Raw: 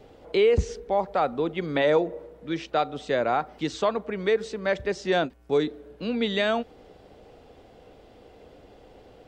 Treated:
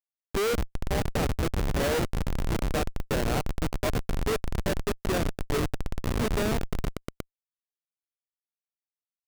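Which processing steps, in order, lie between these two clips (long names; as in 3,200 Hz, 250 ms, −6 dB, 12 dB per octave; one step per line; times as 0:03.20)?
echo that builds up and dies away 118 ms, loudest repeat 5, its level −11.5 dB
comparator with hysteresis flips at −19.5 dBFS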